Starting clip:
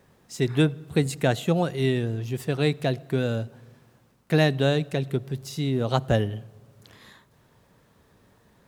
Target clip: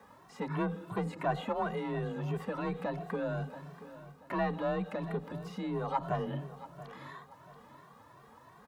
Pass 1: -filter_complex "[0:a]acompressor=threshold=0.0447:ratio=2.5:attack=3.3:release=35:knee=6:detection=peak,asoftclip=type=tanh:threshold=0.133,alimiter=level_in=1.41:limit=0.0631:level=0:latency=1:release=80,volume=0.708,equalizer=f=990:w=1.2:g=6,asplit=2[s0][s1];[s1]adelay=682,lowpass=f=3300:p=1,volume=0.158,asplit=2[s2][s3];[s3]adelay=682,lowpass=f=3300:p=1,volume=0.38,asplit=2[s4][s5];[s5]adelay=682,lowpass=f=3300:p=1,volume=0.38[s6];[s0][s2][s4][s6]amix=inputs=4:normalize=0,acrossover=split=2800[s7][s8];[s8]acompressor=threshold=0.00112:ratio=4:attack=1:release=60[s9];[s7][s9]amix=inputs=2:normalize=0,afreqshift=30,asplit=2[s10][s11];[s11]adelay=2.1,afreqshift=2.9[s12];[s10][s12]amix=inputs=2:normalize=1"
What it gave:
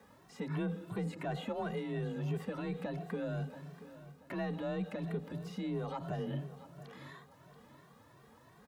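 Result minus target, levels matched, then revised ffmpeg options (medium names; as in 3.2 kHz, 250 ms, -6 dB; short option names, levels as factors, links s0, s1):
compression: peak gain reduction +8 dB; 1 kHz band -6.0 dB
-filter_complex "[0:a]asoftclip=type=tanh:threshold=0.133,alimiter=level_in=1.41:limit=0.0631:level=0:latency=1:release=80,volume=0.708,equalizer=f=990:w=1.2:g=14.5,asplit=2[s0][s1];[s1]adelay=682,lowpass=f=3300:p=1,volume=0.158,asplit=2[s2][s3];[s3]adelay=682,lowpass=f=3300:p=1,volume=0.38,asplit=2[s4][s5];[s5]adelay=682,lowpass=f=3300:p=1,volume=0.38[s6];[s0][s2][s4][s6]amix=inputs=4:normalize=0,acrossover=split=2800[s7][s8];[s8]acompressor=threshold=0.00112:ratio=4:attack=1:release=60[s9];[s7][s9]amix=inputs=2:normalize=0,afreqshift=30,asplit=2[s10][s11];[s11]adelay=2.1,afreqshift=2.9[s12];[s10][s12]amix=inputs=2:normalize=1"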